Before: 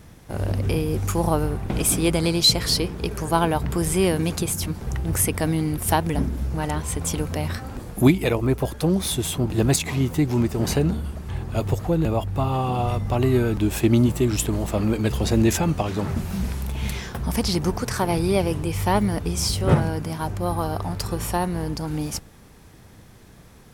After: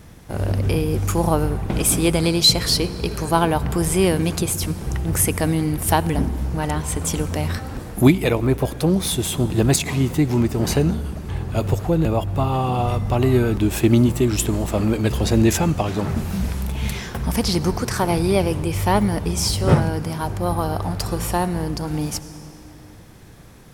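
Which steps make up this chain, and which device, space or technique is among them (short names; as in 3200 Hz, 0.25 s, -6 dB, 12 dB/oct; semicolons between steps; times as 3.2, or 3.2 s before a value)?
compressed reverb return (on a send at -9.5 dB: reverb RT60 2.7 s, pre-delay 58 ms + compressor, threshold -26 dBFS, peak gain reduction 13 dB); on the sum: gain +2.5 dB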